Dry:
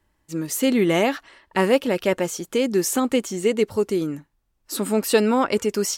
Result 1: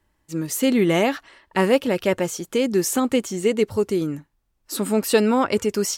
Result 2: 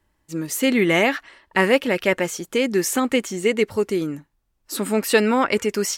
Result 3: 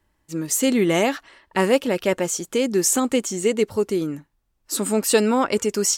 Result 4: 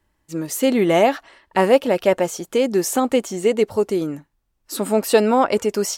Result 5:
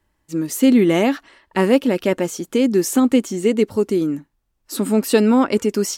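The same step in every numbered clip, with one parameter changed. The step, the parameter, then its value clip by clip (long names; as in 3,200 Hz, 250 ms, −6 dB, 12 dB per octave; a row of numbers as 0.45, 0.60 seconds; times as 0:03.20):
dynamic equaliser, frequency: 100, 2,000, 7,400, 690, 260 Hertz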